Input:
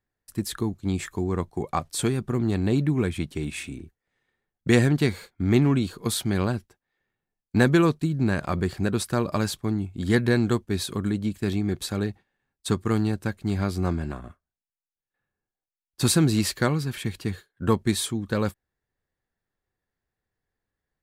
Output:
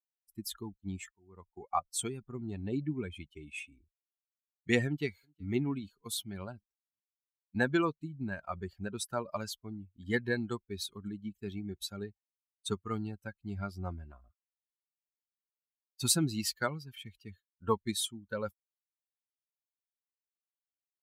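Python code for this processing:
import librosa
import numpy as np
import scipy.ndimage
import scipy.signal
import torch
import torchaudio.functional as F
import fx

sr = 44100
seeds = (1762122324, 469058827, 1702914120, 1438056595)

y = fx.echo_throw(x, sr, start_s=4.86, length_s=0.66, ms=370, feedback_pct=50, wet_db=-17.5)
y = fx.edit(y, sr, fx.fade_in_from(start_s=1.11, length_s=0.57, floor_db=-21.5), tone=tone)
y = fx.bin_expand(y, sr, power=2.0)
y = fx.low_shelf(y, sr, hz=280.0, db=-10.5)
y = fx.rider(y, sr, range_db=4, speed_s=2.0)
y = F.gain(torch.from_numpy(y), -3.0).numpy()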